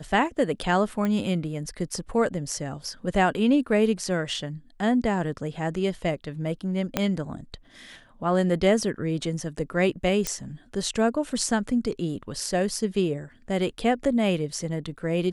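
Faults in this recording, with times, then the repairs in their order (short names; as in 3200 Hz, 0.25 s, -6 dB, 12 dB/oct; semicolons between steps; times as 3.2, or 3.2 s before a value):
1.05 pop -16 dBFS
6.97 pop -8 dBFS
10.27 pop -10 dBFS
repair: de-click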